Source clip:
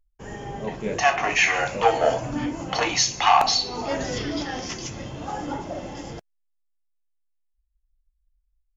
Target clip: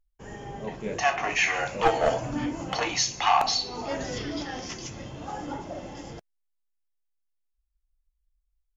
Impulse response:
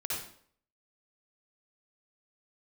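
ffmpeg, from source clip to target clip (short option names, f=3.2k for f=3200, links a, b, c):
-filter_complex "[0:a]asettb=1/sr,asplit=3[a][b][c];[a]atrim=end=1.794[d];[b]atrim=start=1.79:end=2.75,asetpts=PTS-STARTPTS,afade=t=in:d=0.004:c=qsin,afade=t=out:st=0.956:d=0.004:c=qsin,aeval=exprs='0.531*(cos(1*acos(clip(val(0)/0.531,-1,1)))-cos(1*PI/2))+0.237*(cos(2*acos(clip(val(0)/0.531,-1,1)))-cos(2*PI/2))+0.0335*(cos(5*acos(clip(val(0)/0.531,-1,1)))-cos(5*PI/2))+0.0168*(cos(8*acos(clip(val(0)/0.531,-1,1)))-cos(8*PI/2))':c=same[e];[c]atrim=start=2.746[f];[d][e]acrossfade=d=0.004:c1=hsin:c2=qsin[g];[g][f]acrossfade=d=0.004:c1=qsin:c2=hsin,volume=-4.5dB"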